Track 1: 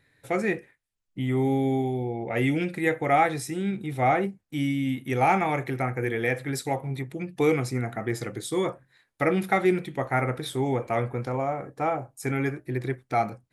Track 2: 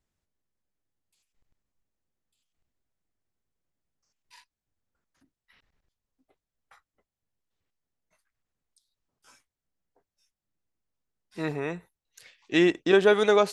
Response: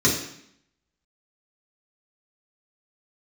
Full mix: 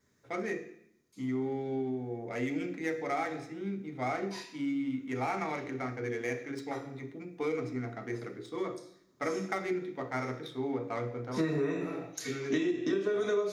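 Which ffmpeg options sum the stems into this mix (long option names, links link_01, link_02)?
-filter_complex "[0:a]highpass=frequency=500:poles=1,adynamicsmooth=sensitivity=4.5:basefreq=1900,volume=-9dB,asplit=2[link_01][link_02];[link_02]volume=-18.5dB[link_03];[1:a]acompressor=threshold=-28dB:ratio=6,lowshelf=frequency=160:gain=-10.5,volume=0.5dB,asplit=3[link_04][link_05][link_06];[link_05]volume=-6dB[link_07];[link_06]apad=whole_len=596626[link_08];[link_01][link_08]sidechaincompress=threshold=-50dB:ratio=8:attack=16:release=893[link_09];[2:a]atrim=start_sample=2205[link_10];[link_03][link_07]amix=inputs=2:normalize=0[link_11];[link_11][link_10]afir=irnorm=-1:irlink=0[link_12];[link_09][link_04][link_12]amix=inputs=3:normalize=0,acompressor=threshold=-28dB:ratio=8"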